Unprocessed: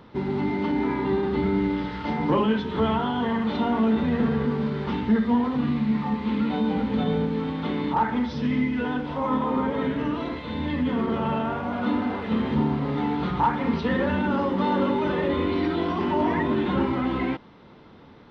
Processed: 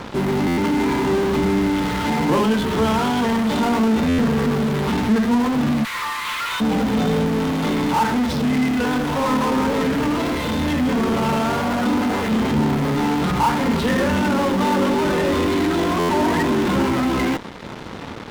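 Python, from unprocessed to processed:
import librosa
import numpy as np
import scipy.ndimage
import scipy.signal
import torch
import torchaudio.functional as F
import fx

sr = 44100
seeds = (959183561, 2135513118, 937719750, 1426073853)

p1 = fx.steep_highpass(x, sr, hz=990.0, slope=72, at=(5.83, 6.6), fade=0.02)
p2 = fx.fuzz(p1, sr, gain_db=48.0, gate_db=-49.0)
p3 = p1 + (p2 * librosa.db_to_amplitude(-11.0))
y = fx.buffer_glitch(p3, sr, at_s=(0.47, 4.08, 15.99), block=512, repeats=8)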